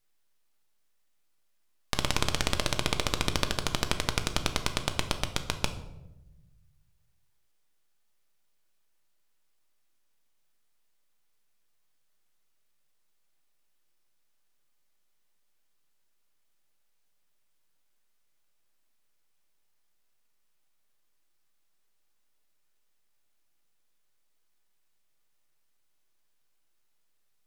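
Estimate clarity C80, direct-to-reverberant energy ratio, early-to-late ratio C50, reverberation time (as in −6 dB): 13.5 dB, 7.0 dB, 11.5 dB, 1.0 s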